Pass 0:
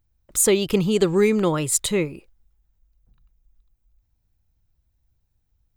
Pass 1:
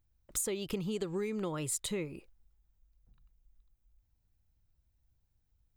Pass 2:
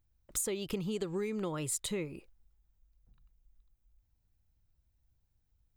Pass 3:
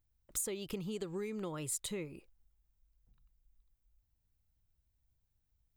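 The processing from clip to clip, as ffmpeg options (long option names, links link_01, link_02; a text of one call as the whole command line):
ffmpeg -i in.wav -af "acompressor=threshold=-26dB:ratio=16,volume=-5.5dB" out.wav
ffmpeg -i in.wav -af anull out.wav
ffmpeg -i in.wav -af "highshelf=frequency=9400:gain=4.5,volume=-4.5dB" out.wav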